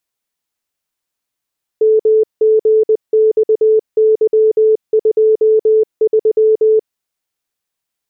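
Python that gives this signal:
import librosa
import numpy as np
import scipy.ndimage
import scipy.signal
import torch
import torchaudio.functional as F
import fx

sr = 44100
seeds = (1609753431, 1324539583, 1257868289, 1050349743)

y = fx.morse(sr, text='MGXY23', wpm=20, hz=436.0, level_db=-7.0)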